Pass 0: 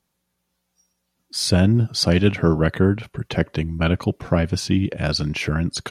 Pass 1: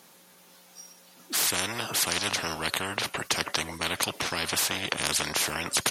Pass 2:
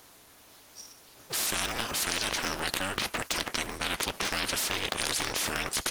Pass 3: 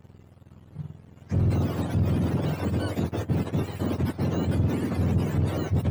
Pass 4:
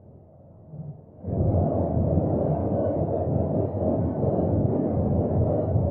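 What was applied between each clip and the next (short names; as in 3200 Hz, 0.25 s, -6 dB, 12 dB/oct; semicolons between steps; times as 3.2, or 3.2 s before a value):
HPF 270 Hz 12 dB/oct; spectral compressor 10:1
cycle switcher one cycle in 2, inverted; in parallel at -2 dB: negative-ratio compressor -30 dBFS, ratio -0.5; on the sum: gain -6 dB
spectrum mirrored in octaves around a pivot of 920 Hz; sample leveller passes 2; gain -6 dB
phase scrambler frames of 0.2 s; synth low-pass 630 Hz, resonance Q 4.3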